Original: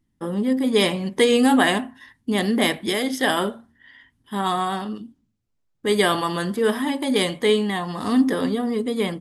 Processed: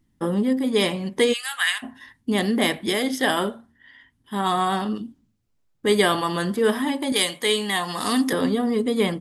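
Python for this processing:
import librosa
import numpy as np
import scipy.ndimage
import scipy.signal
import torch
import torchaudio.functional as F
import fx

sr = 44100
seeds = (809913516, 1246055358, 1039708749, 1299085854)

y = fx.highpass(x, sr, hz=1400.0, slope=24, at=(1.32, 1.82), fade=0.02)
y = fx.tilt_eq(y, sr, slope=3.0, at=(7.12, 8.33))
y = fx.rider(y, sr, range_db=10, speed_s=0.5)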